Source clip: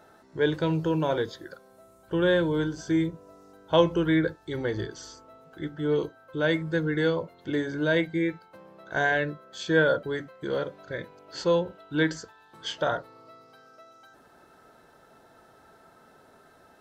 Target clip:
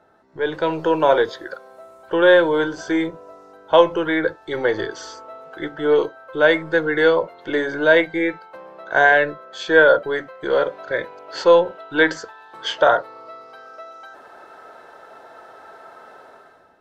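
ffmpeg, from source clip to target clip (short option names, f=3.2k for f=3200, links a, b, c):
-filter_complex "[0:a]lowpass=f=1.8k:p=1,acrossover=split=420[a][b];[a]aeval=exprs='(tanh(56.2*val(0)+0.6)-tanh(0.6))/56.2':c=same[c];[b]dynaudnorm=f=130:g=9:m=16dB[d];[c][d]amix=inputs=2:normalize=0"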